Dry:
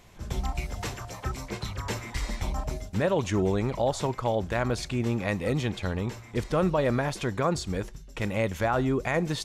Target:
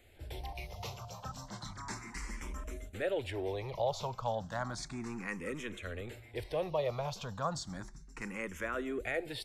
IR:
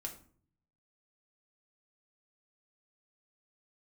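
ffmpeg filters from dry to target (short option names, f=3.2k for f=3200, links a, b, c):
-filter_complex "[0:a]acrossover=split=450|1200[a][b][c];[a]asoftclip=type=tanh:threshold=-32dB[d];[d][b][c]amix=inputs=3:normalize=0,asplit=2[e][f];[f]afreqshift=0.33[g];[e][g]amix=inputs=2:normalize=1,volume=-5dB"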